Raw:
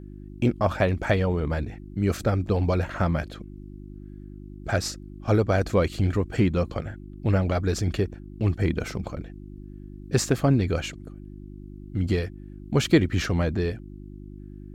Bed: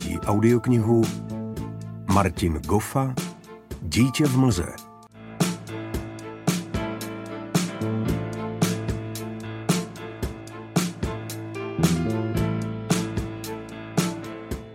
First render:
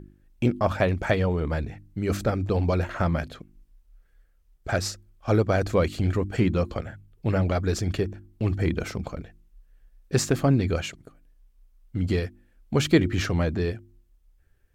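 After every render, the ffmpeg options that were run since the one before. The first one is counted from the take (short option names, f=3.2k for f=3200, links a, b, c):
-af "bandreject=f=50:t=h:w=4,bandreject=f=100:t=h:w=4,bandreject=f=150:t=h:w=4,bandreject=f=200:t=h:w=4,bandreject=f=250:t=h:w=4,bandreject=f=300:t=h:w=4,bandreject=f=350:t=h:w=4"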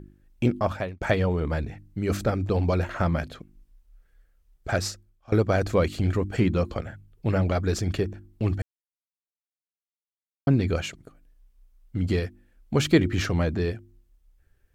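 -filter_complex "[0:a]asplit=5[a][b][c][d][e];[a]atrim=end=1.01,asetpts=PTS-STARTPTS,afade=t=out:st=0.57:d=0.44[f];[b]atrim=start=1.01:end=5.32,asetpts=PTS-STARTPTS,afade=t=in:d=0.004:c=hsin,afade=t=out:st=3.83:d=0.48:silence=0.0749894[g];[c]atrim=start=5.32:end=8.62,asetpts=PTS-STARTPTS,afade=t=in:d=0.004:c=hsin:silence=0.0749894,afade=t=out:st=3.296:d=0.004:c=hsin[h];[d]atrim=start=8.62:end=10.47,asetpts=PTS-STARTPTS,volume=0[i];[e]atrim=start=10.47,asetpts=PTS-STARTPTS,afade=t=in:d=0.004:c=hsin[j];[f][g][h][i][j]concat=n=5:v=0:a=1"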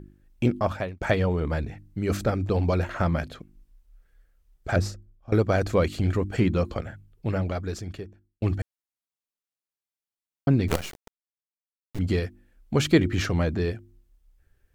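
-filter_complex "[0:a]asettb=1/sr,asplit=3[a][b][c];[a]atrim=end=4.764[d];[b]atrim=start=4.76:end=5.32,asetpts=PTS-STARTPTS,afade=t=in:d=0.004:c=qsin,afade=t=out:st=0.556:d=0.004:c=qsin,tiltshelf=f=740:g=7.5[e];[c]atrim=start=5.316[f];[d][e]acrossfade=d=0.004:c1=hsin:c2=qsin[g];[g][f]acrossfade=d=0.004:c1=qsin:c2=hsin,asettb=1/sr,asplit=3[h][i][j];[h]atrim=end=10.684[k];[i]atrim=start=10.68:end=11.99,asetpts=PTS-STARTPTS,afade=t=in:d=0.004:c=qsin,afade=t=out:st=1.306:d=0.004:c=qsin,acrusher=bits=4:dc=4:mix=0:aa=0.000001[l];[j]atrim=start=11.986[m];[k][l]acrossfade=d=0.004:c1=hsin:c2=qsin[n];[n][m]acrossfade=d=0.004:c1=qsin:c2=hsin,asplit=2[o][p];[o]atrim=end=8.42,asetpts=PTS-STARTPTS,afade=t=out:st=6.9:d=1.52[q];[p]atrim=start=8.42,asetpts=PTS-STARTPTS,afade=t=in:d=0.004:c=hsin[r];[q][r]concat=n=2:v=0:a=1"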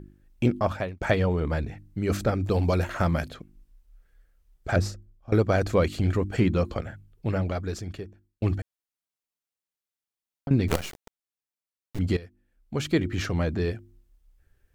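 -filter_complex "[0:a]asettb=1/sr,asplit=3[a][b][c];[a]atrim=end=2.444[d];[b]atrim=start=2.44:end=3.3,asetpts=PTS-STARTPTS,afade=t=in:d=0.004:c=qsin,afade=t=out:st=0.856:d=0.004:c=qsin,highshelf=f=6.8k:g=11.5[e];[c]atrim=start=3.296[f];[d][e]acrossfade=d=0.004:c1=hsin:c2=qsin[g];[g][f]acrossfade=d=0.004:c1=qsin:c2=hsin,asettb=1/sr,asplit=3[h][i][j];[h]atrim=end=8.594[k];[i]atrim=start=8.59:end=10.51,asetpts=PTS-STARTPTS,afade=t=in:d=0.004:c=qsin,afade=t=out:st=1.916:d=0.004:c=qsin,acompressor=threshold=-30dB:ratio=4:attack=3.2:release=140:knee=1:detection=peak[l];[j]atrim=start=10.506[m];[k][l]acrossfade=d=0.004:c1=hsin:c2=qsin[n];[n][m]acrossfade=d=0.004:c1=qsin:c2=hsin,asplit=2[o][p];[o]atrim=end=12.17,asetpts=PTS-STARTPTS,afade=t=out:st=12.166:d=0.004:c=hsin:silence=0.158489[q];[p]atrim=start=12.17,asetpts=PTS-STARTPTS,afade=t=in:d=1.59:silence=0.158489[r];[q][r]concat=n=2:v=0:a=1"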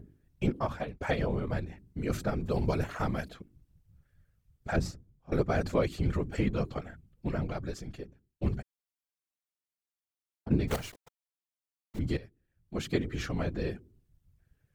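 -af "afftfilt=real='hypot(re,im)*cos(2*PI*random(0))':imag='hypot(re,im)*sin(2*PI*random(1))':win_size=512:overlap=0.75"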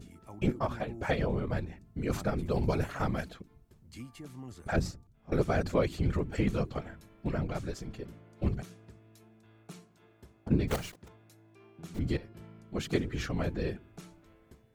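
-filter_complex "[1:a]volume=-26dB[a];[0:a][a]amix=inputs=2:normalize=0"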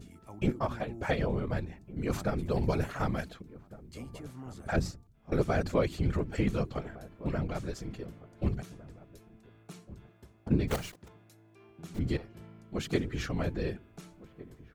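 -filter_complex "[0:a]asplit=2[a][b];[b]adelay=1458,volume=-18dB,highshelf=f=4k:g=-32.8[c];[a][c]amix=inputs=2:normalize=0"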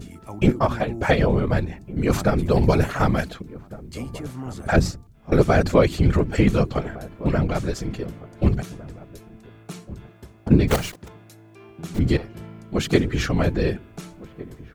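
-af "volume=11.5dB"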